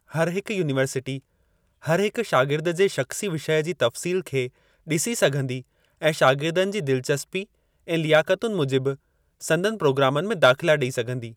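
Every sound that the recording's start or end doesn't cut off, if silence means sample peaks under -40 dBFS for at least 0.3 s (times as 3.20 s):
1.83–4.49 s
4.87–5.62 s
6.01–7.44 s
7.88–8.95 s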